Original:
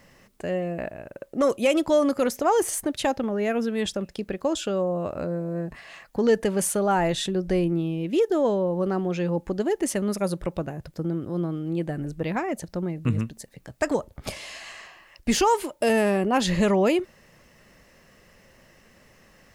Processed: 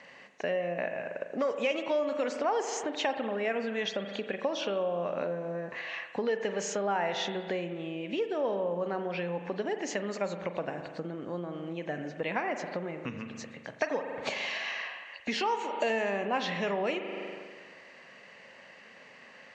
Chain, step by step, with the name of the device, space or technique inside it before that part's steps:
parametric band 2,200 Hz +5 dB 2.3 octaves
spring reverb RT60 1.4 s, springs 40 ms, chirp 80 ms, DRR 8 dB
hearing aid with frequency lowering (hearing-aid frequency compression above 3,500 Hz 1.5 to 1; downward compressor 4 to 1, threshold −29 dBFS, peak gain reduction 13.5 dB; loudspeaker in its box 300–6,300 Hz, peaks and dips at 340 Hz −7 dB, 1,300 Hz −5 dB, 3,500 Hz −3 dB, 5,100 Hz −7 dB)
level +2.5 dB

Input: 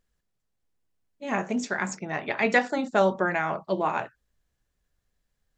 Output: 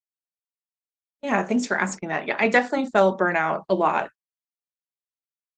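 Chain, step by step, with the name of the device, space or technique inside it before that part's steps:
video call (high-pass filter 170 Hz 24 dB per octave; automatic gain control gain up to 6 dB; noise gate −32 dBFS, range −33 dB; Opus 24 kbit/s 48,000 Hz)

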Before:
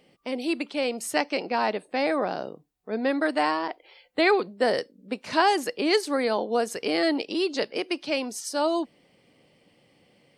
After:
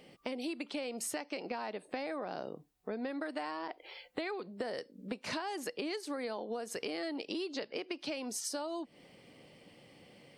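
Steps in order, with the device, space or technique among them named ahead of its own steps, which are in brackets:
serial compression, peaks first (downward compressor, threshold −32 dBFS, peak gain reduction 15 dB; downward compressor 2.5 to 1, threshold −41 dBFS, peak gain reduction 9 dB)
0:07.54–0:07.99: low-pass filter 5,900 Hz 12 dB per octave
level +3 dB

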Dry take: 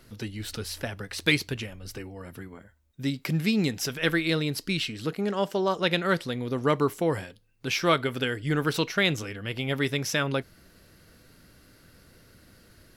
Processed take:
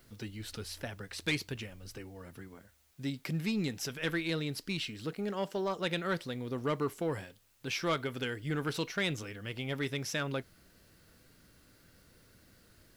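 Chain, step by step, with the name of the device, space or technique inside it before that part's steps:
compact cassette (soft clipping −16 dBFS, distortion −18 dB; low-pass filter 13,000 Hz; tape wow and flutter 22 cents; white noise bed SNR 33 dB)
level −7 dB

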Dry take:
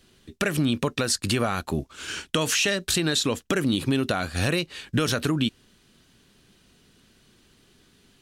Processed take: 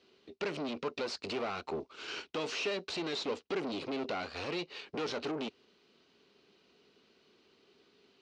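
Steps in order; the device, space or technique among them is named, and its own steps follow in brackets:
guitar amplifier (tube saturation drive 31 dB, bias 0.7; bass and treble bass −11 dB, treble +4 dB; loudspeaker in its box 95–4,300 Hz, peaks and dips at 120 Hz −9 dB, 420 Hz +7 dB, 1,700 Hz −8 dB, 3,400 Hz −6 dB)

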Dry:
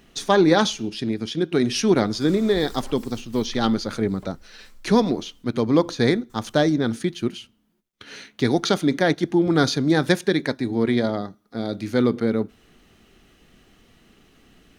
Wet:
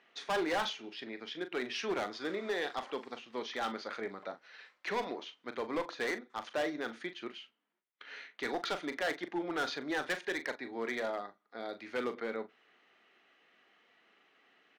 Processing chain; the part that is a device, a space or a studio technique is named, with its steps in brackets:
megaphone (band-pass filter 630–2,800 Hz; parametric band 2,000 Hz +4 dB 0.43 octaves; hard clipping −22.5 dBFS, distortion −8 dB; double-tracking delay 40 ms −11 dB)
level −6.5 dB

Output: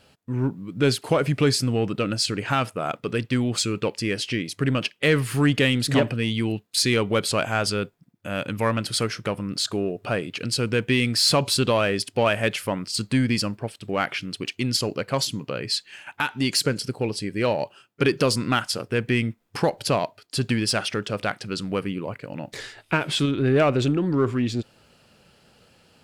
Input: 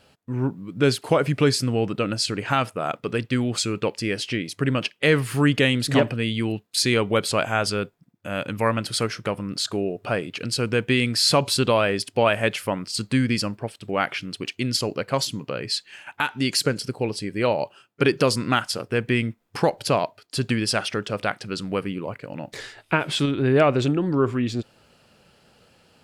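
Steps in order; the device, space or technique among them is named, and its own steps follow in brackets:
parallel distortion (in parallel at −9 dB: hard clipping −20 dBFS, distortion −8 dB)
on the sum: parametric band 790 Hz −2 dB 2.5 octaves
level −1.5 dB

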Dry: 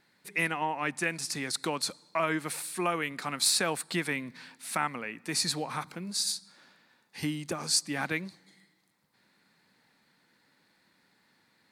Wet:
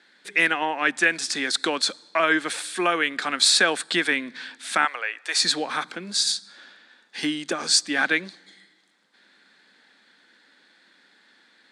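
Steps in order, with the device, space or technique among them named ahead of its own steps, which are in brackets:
television speaker (loudspeaker in its box 230–8,700 Hz, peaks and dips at 960 Hz −4 dB, 1,600 Hz +8 dB, 3,400 Hz +9 dB)
0:04.85–0:05.42: high-pass filter 530 Hz 24 dB per octave
level +7 dB

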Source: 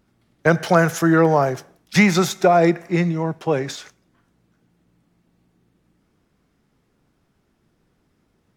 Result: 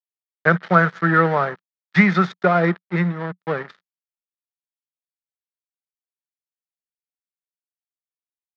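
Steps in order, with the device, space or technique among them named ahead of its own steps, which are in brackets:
blown loudspeaker (dead-zone distortion −28 dBFS; loudspeaker in its box 150–3,900 Hz, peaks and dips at 180 Hz +8 dB, 290 Hz −8 dB, 710 Hz −3 dB, 1,300 Hz +9 dB, 1,800 Hz +8 dB, 2,700 Hz −5 dB)
level −1.5 dB

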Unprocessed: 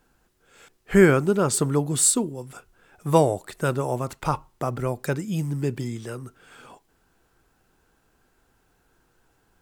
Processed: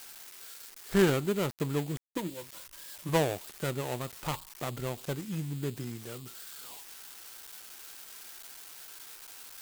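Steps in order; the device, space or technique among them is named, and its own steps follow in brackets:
0:02.16–0:03.09: EQ curve with evenly spaced ripples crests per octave 1.2, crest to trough 15 dB
budget class-D amplifier (gap after every zero crossing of 0.24 ms; spike at every zero crossing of −20.5 dBFS)
level −8.5 dB

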